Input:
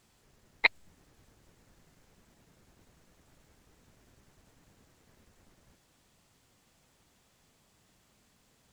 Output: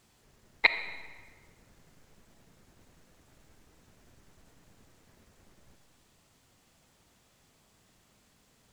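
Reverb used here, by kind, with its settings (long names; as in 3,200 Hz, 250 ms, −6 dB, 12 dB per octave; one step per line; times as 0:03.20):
comb and all-pass reverb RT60 1.5 s, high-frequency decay 0.75×, pre-delay 5 ms, DRR 9.5 dB
level +1.5 dB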